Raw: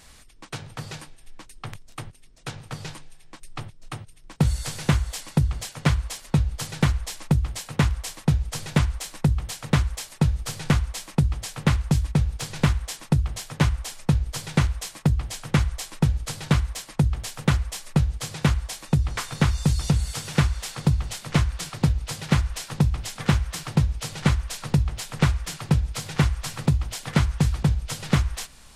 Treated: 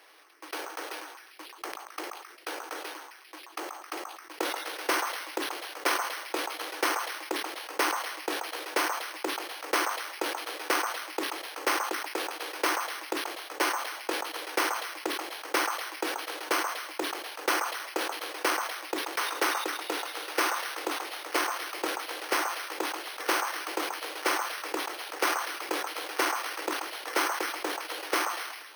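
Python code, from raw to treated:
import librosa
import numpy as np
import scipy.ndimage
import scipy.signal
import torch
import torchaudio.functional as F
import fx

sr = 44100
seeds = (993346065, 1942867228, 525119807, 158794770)

p1 = scipy.signal.sosfilt(scipy.signal.cheby1(6, 1.0, 310.0, 'highpass', fs=sr, output='sos'), x)
p2 = p1 + fx.echo_stepped(p1, sr, ms=133, hz=1000.0, octaves=0.7, feedback_pct=70, wet_db=-6.0, dry=0)
p3 = np.repeat(scipy.signal.resample_poly(p2, 1, 6), 6)[:len(p2)]
y = fx.sustainer(p3, sr, db_per_s=47.0)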